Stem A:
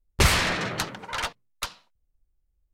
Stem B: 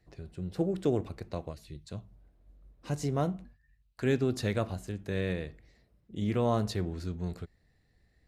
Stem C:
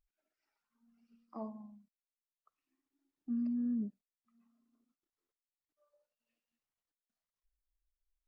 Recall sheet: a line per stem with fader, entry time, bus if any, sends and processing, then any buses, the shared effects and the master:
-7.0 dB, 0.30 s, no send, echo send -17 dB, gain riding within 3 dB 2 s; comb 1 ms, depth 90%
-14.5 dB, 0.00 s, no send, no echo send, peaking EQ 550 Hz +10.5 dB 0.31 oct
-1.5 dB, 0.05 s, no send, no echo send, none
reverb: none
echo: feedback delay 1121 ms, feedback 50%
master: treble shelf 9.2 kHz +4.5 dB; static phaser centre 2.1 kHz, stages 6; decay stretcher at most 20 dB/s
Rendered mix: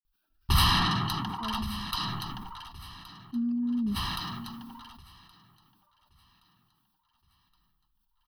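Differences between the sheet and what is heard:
stem B: muted; stem C -1.5 dB -> +7.5 dB

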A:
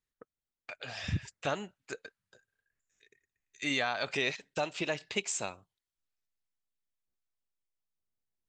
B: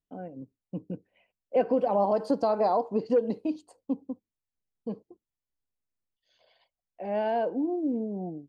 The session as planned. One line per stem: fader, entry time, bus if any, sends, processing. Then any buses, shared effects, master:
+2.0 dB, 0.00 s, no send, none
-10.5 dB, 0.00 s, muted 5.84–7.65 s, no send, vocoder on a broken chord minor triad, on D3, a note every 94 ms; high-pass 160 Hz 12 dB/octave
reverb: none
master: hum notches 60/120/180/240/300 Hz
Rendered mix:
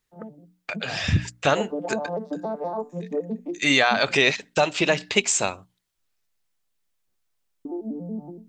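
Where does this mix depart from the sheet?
stem A +2.0 dB -> +12.5 dB; stem B -10.5 dB -> -2.0 dB

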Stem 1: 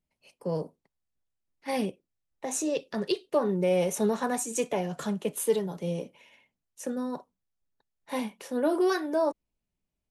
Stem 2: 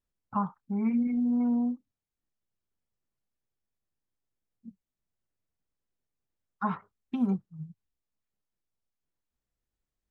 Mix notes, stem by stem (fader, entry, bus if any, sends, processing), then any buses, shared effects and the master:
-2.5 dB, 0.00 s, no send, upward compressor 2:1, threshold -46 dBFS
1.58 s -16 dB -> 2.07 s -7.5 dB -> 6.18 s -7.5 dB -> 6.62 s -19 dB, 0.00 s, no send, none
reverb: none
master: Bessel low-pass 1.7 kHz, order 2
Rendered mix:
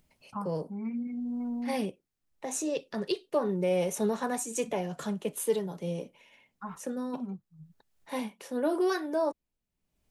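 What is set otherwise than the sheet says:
stem 2 -16.0 dB -> -7.5 dB; master: missing Bessel low-pass 1.7 kHz, order 2

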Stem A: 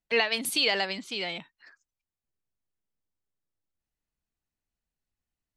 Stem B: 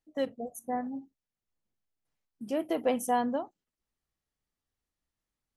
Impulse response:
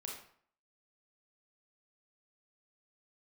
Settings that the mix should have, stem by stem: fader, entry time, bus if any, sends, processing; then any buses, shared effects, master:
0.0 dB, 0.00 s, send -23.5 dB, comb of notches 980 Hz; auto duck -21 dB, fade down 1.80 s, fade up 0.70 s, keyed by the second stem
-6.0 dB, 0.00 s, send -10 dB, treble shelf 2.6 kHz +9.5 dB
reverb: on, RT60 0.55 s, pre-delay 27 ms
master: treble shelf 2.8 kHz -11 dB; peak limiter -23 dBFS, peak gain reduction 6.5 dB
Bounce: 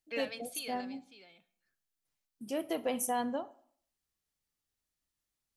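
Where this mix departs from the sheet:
stem A 0.0 dB -> -11.0 dB; master: missing treble shelf 2.8 kHz -11 dB

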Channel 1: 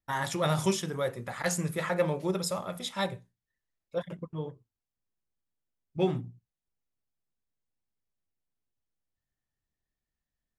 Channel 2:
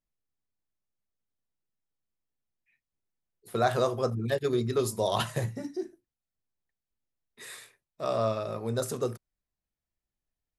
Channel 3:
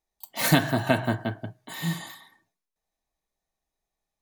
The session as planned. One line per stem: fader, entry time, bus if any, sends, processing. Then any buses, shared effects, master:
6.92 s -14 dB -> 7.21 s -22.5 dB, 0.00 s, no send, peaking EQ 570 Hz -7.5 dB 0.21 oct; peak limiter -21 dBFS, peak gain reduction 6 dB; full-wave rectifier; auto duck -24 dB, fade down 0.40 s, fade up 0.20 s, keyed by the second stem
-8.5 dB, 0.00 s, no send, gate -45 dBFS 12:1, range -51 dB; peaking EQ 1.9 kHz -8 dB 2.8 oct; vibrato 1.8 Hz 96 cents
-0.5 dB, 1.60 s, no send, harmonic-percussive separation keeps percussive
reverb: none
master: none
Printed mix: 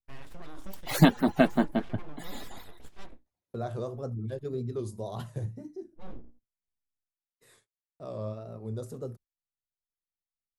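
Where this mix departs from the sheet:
stem 3: entry 1.60 s -> 0.50 s; master: extra tilt EQ -2 dB/octave

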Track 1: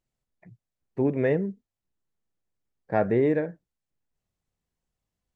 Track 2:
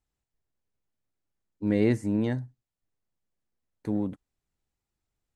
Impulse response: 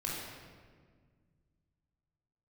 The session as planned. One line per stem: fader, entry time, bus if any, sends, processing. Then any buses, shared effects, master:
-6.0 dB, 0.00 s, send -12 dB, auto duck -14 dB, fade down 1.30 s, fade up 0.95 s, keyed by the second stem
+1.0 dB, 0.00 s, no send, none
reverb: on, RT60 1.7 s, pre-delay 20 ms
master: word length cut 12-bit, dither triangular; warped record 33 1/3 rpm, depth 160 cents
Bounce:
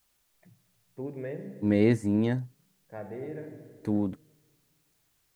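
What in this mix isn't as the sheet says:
stem 1: send -12 dB -> -18.5 dB; master: missing warped record 33 1/3 rpm, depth 160 cents

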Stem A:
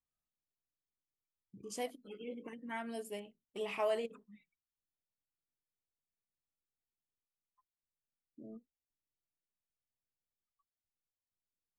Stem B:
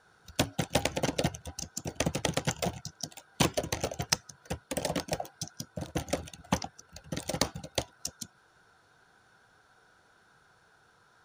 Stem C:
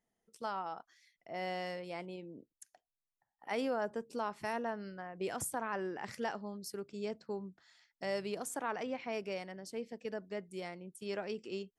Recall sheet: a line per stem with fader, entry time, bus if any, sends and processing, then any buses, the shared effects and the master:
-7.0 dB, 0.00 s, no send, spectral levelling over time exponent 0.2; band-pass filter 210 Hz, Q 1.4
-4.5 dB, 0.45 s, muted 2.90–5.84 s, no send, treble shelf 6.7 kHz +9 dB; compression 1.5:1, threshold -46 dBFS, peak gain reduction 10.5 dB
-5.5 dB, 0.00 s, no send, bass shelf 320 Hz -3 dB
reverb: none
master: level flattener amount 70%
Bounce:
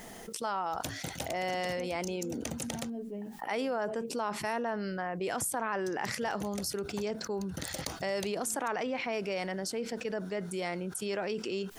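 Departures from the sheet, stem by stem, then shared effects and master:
stem A: missing spectral levelling over time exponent 0.2; stem B -4.5 dB -> -13.5 dB; stem C -5.5 dB -> +2.0 dB

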